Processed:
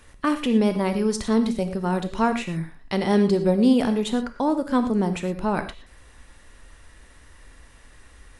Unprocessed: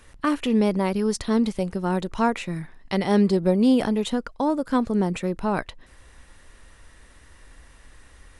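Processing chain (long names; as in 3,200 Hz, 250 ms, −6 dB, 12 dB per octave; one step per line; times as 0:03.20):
reverb whose tail is shaped and stops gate 140 ms flat, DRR 8 dB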